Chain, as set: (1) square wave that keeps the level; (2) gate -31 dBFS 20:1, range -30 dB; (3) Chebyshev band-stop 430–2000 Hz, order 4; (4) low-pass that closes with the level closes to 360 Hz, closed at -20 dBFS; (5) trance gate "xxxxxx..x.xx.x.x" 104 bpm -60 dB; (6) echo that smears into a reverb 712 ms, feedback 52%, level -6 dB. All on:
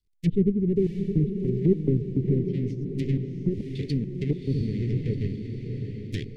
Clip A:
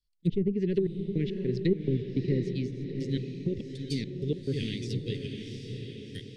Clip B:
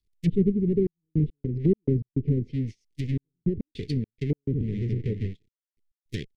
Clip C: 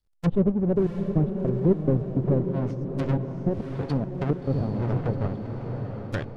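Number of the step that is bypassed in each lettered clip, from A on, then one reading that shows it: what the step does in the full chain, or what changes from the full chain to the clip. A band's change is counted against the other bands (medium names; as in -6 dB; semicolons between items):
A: 1, distortion -5 dB; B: 6, echo-to-direct -4.5 dB to none; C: 3, 2 kHz band +5.0 dB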